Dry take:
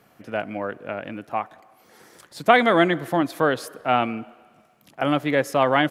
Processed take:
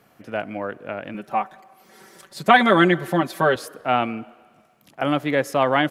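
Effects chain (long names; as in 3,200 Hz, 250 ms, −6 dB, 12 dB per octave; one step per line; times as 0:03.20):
0:01.14–0:03.56: comb filter 5.2 ms, depth 90%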